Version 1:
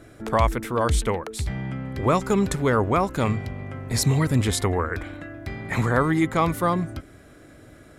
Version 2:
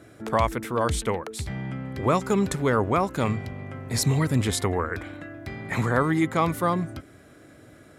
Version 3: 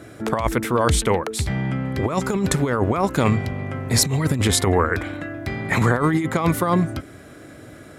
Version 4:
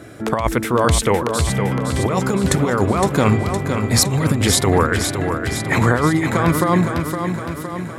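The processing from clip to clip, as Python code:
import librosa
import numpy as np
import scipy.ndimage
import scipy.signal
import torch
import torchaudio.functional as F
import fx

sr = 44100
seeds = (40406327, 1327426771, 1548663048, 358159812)

y1 = scipy.signal.sosfilt(scipy.signal.butter(2, 83.0, 'highpass', fs=sr, output='sos'), x)
y1 = y1 * 10.0 ** (-1.5 / 20.0)
y2 = fx.over_compress(y1, sr, threshold_db=-24.0, ratio=-0.5)
y2 = y2 * 10.0 ** (6.5 / 20.0)
y3 = fx.echo_feedback(y2, sr, ms=513, feedback_pct=58, wet_db=-7.0)
y3 = y3 * 10.0 ** (2.5 / 20.0)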